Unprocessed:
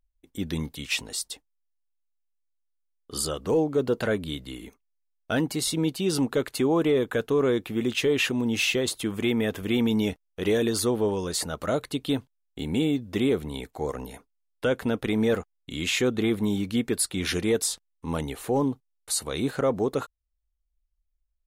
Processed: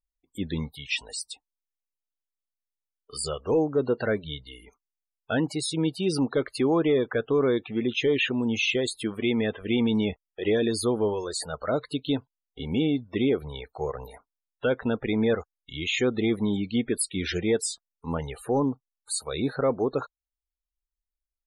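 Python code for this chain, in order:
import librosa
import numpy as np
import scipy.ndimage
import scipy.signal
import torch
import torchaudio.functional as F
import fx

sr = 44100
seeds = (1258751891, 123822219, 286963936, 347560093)

y = fx.spec_topn(x, sr, count=64)
y = fx.noise_reduce_blind(y, sr, reduce_db=14)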